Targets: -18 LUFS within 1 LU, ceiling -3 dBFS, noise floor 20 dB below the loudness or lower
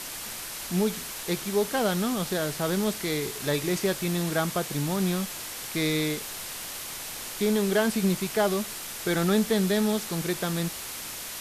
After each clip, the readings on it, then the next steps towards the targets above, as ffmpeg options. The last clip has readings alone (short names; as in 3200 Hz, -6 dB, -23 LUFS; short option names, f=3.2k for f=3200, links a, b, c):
noise floor -37 dBFS; noise floor target -48 dBFS; loudness -27.5 LUFS; peak -11.5 dBFS; loudness target -18.0 LUFS
-> -af "afftdn=nr=11:nf=-37"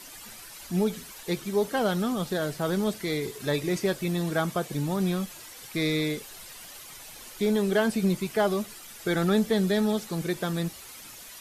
noise floor -45 dBFS; noise floor target -48 dBFS
-> -af "afftdn=nr=6:nf=-45"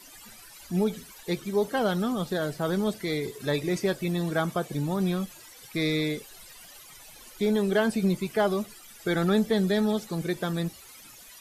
noise floor -49 dBFS; loudness -28.0 LUFS; peak -12.0 dBFS; loudness target -18.0 LUFS
-> -af "volume=10dB,alimiter=limit=-3dB:level=0:latency=1"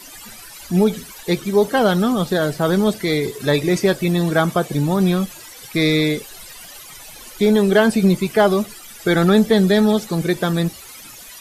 loudness -18.0 LUFS; peak -3.0 dBFS; noise floor -39 dBFS